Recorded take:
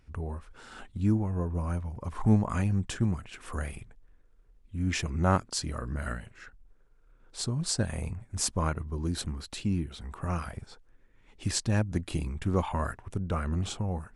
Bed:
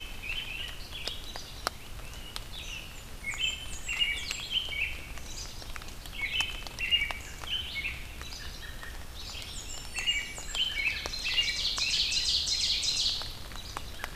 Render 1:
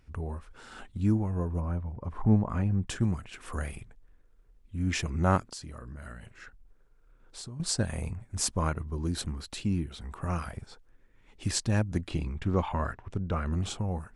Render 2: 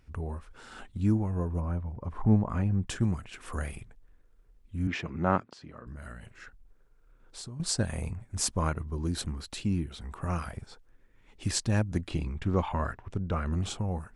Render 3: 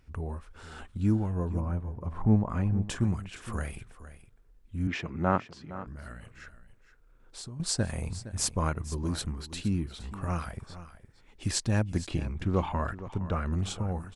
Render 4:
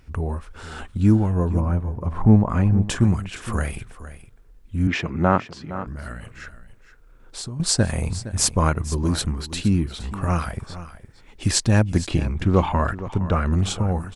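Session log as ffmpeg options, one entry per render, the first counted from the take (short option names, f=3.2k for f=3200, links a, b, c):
-filter_complex "[0:a]asplit=3[a][b][c];[a]afade=t=out:st=1.59:d=0.02[d];[b]lowpass=f=1.1k:p=1,afade=t=in:st=1.59:d=0.02,afade=t=out:st=2.86:d=0.02[e];[c]afade=t=in:st=2.86:d=0.02[f];[d][e][f]amix=inputs=3:normalize=0,asettb=1/sr,asplit=3[g][h][i];[g]atrim=end=5.514[j];[h]atrim=start=5.51:end=7.6,asetpts=PTS-STARTPTS,afade=t=in:d=0.004:c=qsin,afade=t=out:st=2.086:d=0.004:c=qsin,acompressor=threshold=-40dB:ratio=4:attack=3.2:release=140:knee=1:detection=peak[k];[i]atrim=start=7.596[l];[j][k]acrossfade=d=0.004:c1=hsin:c2=qsin[m];[m][l]acrossfade=d=0.004:c1=qsin:c2=hsin,asettb=1/sr,asplit=3[n][o][p];[n]atrim=end=12.084[q];[o]atrim=start=12.08:end=13.46,asetpts=PTS-STARTPTS,afade=t=in:d=0.004:c=qsin,afade=t=out:st=1.376:d=0.004:c=qsin,lowpass=5.1k[r];[p]atrim=start=13.456[s];[q][r]acrossfade=d=0.004:c1=hsin:c2=qsin[t];[t][s]acrossfade=d=0.004:c1=qsin:c2=hsin"
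-filter_complex "[0:a]asettb=1/sr,asplit=3[a][b][c];[a]atrim=end=4.874[d];[b]atrim=start=4.87:end=5.87,asetpts=PTS-STARTPTS,afade=t=in:d=0.004:c=qsin,afade=t=out:st=0.996:d=0.004:c=qsin,highpass=140,lowpass=2.9k[e];[c]atrim=start=5.866[f];[d][e]acrossfade=d=0.004:c1=hsin:c2=qsin[g];[g][f]acrossfade=d=0.004:c1=qsin:c2=hsin"
-af "aecho=1:1:464:0.188"
-af "volume=9.5dB,alimiter=limit=-3dB:level=0:latency=1"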